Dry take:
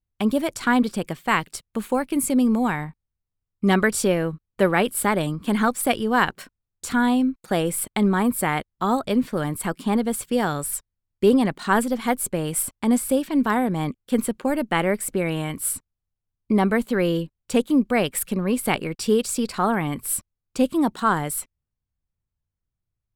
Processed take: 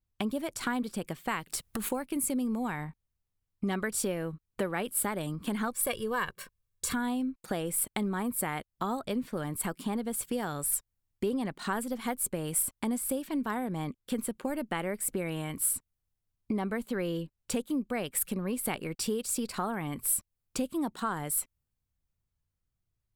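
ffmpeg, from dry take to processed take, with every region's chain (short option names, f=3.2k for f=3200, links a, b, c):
-filter_complex "[0:a]asettb=1/sr,asplit=3[a][b][c];[a]atrim=end=1.494[d];[b]atrim=start=1.49:end=1.89,asetpts=PTS-STARTPTS,afade=t=in:d=0.004:c=qsin,afade=t=out:st=0.396:d=0.004:c=qsin,acompressor=threshold=-36dB:ratio=6:attack=3.2:release=140:knee=1:detection=peak,aeval=exprs='0.0631*sin(PI/2*2.51*val(0)/0.0631)':c=same[e];[c]atrim=start=1.886[f];[d][e]acrossfade=d=0.004:c1=hsin:c2=qsin[g];[g][f]acrossfade=d=0.004:c1=qsin:c2=hsin,asettb=1/sr,asplit=3[h][i][j];[h]atrim=end=5.724[k];[i]atrim=start=5.72:end=6.94,asetpts=PTS-STARTPTS,afade=t=in:d=0.004:c=qsin,afade=t=out:st=1.216:d=0.004:c=qsin,equalizer=f=670:w=5.2:g=-8.5,aecho=1:1:1.8:0.67,atrim=end_sample=53802[l];[j]atrim=start=6.936[m];[k][l]acrossfade=d=0.004:c1=hsin:c2=qsin[n];[n][m]acrossfade=d=0.004:c1=qsin:c2=hsin,acompressor=threshold=-33dB:ratio=3,adynamicequalizer=threshold=0.00355:dfrequency=7900:dqfactor=0.7:tfrequency=7900:tqfactor=0.7:attack=5:release=100:ratio=0.375:range=3.5:mode=boostabove:tftype=highshelf"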